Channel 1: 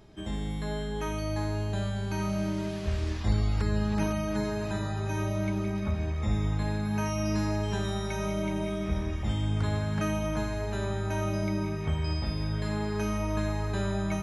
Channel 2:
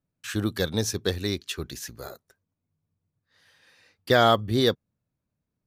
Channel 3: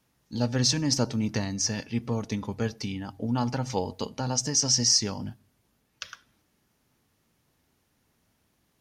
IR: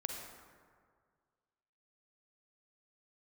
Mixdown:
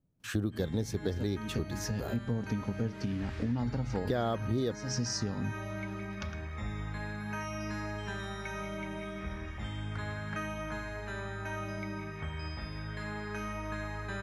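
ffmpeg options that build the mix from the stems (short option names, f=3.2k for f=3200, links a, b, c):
-filter_complex "[0:a]equalizer=f=1.7k:w=1:g=11.5,adelay=350,volume=-10dB[a];[1:a]tiltshelf=f=830:g=7,alimiter=limit=-11dB:level=0:latency=1:release=296,volume=0dB,asplit=2[b][c];[2:a]tiltshelf=f=660:g=7.5,adelay=200,volume=-2.5dB[d];[c]apad=whole_len=397226[e];[d][e]sidechaincompress=threshold=-35dB:ratio=8:attack=16:release=243[f];[a][b][f]amix=inputs=3:normalize=0,acompressor=threshold=-31dB:ratio=3"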